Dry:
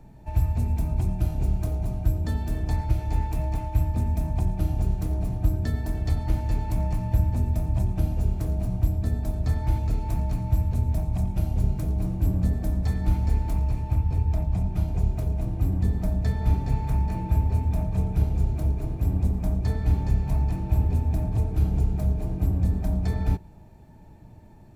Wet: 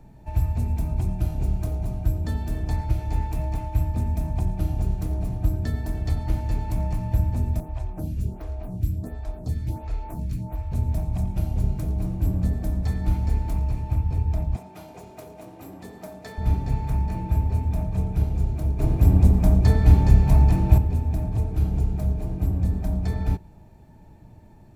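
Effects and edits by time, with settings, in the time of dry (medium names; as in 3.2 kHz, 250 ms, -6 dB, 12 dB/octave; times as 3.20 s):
7.60–10.72 s: lamp-driven phase shifter 1.4 Hz
14.56–16.38 s: high-pass 400 Hz
18.79–20.78 s: gain +8 dB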